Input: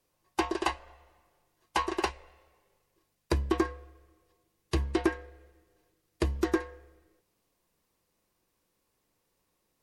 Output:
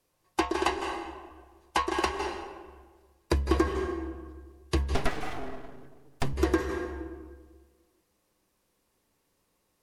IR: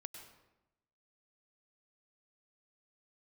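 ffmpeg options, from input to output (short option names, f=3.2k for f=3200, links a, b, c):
-filter_complex "[1:a]atrim=start_sample=2205,asetrate=26901,aresample=44100[a];[0:a][a]afir=irnorm=-1:irlink=0,asettb=1/sr,asplit=3[b][c][d];[b]atrim=end=4.954[e];[c]atrim=start=4.95:end=6.33,asetpts=PTS-STARTPTS,afade=t=in:d=0.004:c=qsin,afade=t=out:st=1.376:d=0.004:c=qsin,aeval=exprs='abs(val(0))':c=same[f];[d]atrim=start=6.326[g];[e][f]acrossfade=d=0.004:c1=hsin:c2=qsin[h];[h][g]acrossfade=d=0.004:c1=qsin:c2=hsin,volume=5dB"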